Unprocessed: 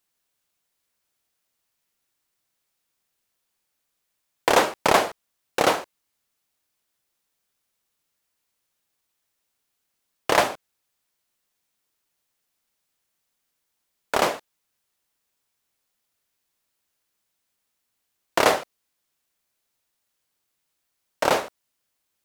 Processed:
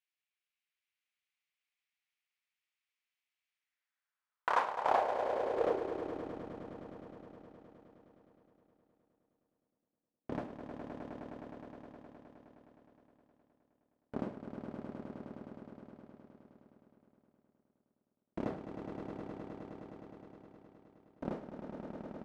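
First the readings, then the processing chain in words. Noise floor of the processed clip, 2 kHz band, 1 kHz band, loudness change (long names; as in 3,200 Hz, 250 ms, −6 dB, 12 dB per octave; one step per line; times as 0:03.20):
below −85 dBFS, −18.0 dB, −11.5 dB, −16.5 dB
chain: half-wave rectification
echo that builds up and dies away 104 ms, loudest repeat 5, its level −8.5 dB
band-pass filter sweep 2,400 Hz → 230 Hz, 0:03.53–0:06.46
level −2 dB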